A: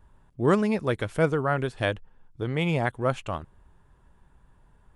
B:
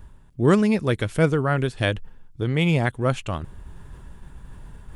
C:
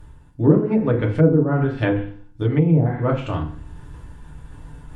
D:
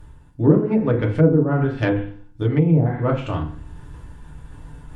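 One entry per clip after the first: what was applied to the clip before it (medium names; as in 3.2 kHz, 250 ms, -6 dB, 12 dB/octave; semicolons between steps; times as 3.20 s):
peaking EQ 850 Hz -7 dB 2.2 oct; reverse; upward compressor, threshold -35 dBFS; reverse; trim +7 dB
FDN reverb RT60 0.48 s, low-frequency decay 1.25×, high-frequency decay 0.75×, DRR -1.5 dB; low-pass that closes with the level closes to 570 Hz, closed at -11 dBFS; trim -1 dB
tracing distortion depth 0.027 ms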